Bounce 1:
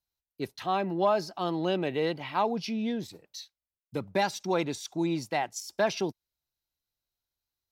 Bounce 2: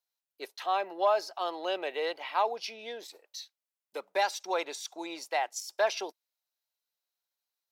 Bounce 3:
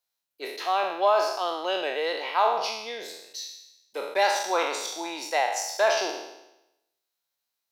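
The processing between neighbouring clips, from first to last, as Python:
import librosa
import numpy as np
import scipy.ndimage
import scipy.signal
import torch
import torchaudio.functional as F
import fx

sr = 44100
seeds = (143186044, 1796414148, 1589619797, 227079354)

y1 = scipy.signal.sosfilt(scipy.signal.butter(4, 480.0, 'highpass', fs=sr, output='sos'), x)
y2 = fx.spec_trails(y1, sr, decay_s=0.89)
y2 = F.gain(torch.from_numpy(y2), 3.0).numpy()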